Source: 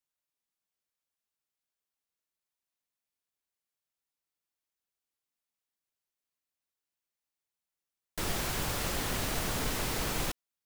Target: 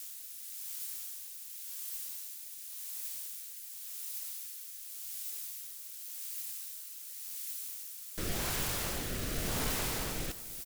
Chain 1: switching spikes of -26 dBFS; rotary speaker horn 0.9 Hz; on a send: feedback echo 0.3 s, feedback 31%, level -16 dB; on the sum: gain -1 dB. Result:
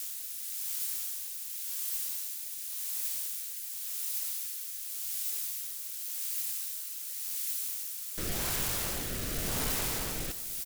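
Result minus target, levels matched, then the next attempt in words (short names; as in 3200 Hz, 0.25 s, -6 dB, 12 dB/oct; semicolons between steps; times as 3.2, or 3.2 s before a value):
switching spikes: distortion +6 dB
switching spikes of -32.5 dBFS; rotary speaker horn 0.9 Hz; on a send: feedback echo 0.3 s, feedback 31%, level -16 dB; on the sum: gain -1 dB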